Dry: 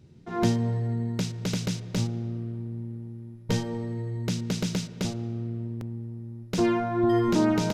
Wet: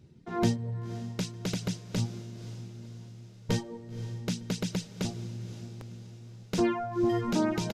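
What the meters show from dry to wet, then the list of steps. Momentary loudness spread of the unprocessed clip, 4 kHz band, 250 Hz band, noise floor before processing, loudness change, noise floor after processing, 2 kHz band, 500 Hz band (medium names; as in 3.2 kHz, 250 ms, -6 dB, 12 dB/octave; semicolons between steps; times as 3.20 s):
13 LU, -3.0 dB, -5.0 dB, -46 dBFS, -4.0 dB, -51 dBFS, -3.5 dB, -4.5 dB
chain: resampled via 32 kHz; reverb removal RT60 1.9 s; echo that smears into a reverb 521 ms, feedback 53%, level -14 dB; trim -2 dB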